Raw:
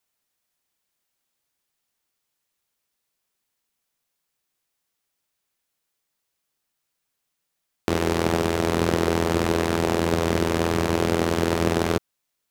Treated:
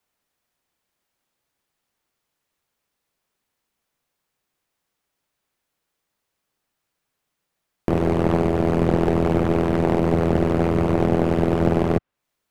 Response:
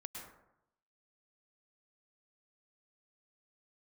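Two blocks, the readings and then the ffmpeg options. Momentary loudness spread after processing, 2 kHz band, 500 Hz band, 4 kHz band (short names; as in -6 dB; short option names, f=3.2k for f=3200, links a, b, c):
2 LU, -4.5 dB, +2.5 dB, -10.0 dB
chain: -filter_complex "[0:a]highshelf=f=2.8k:g=-9,acrossover=split=110|3100[a][b][c];[b]aeval=exprs='clip(val(0),-1,0.0398)':c=same[d];[c]acompressor=threshold=-56dB:ratio=6[e];[a][d][e]amix=inputs=3:normalize=0,volume=6dB"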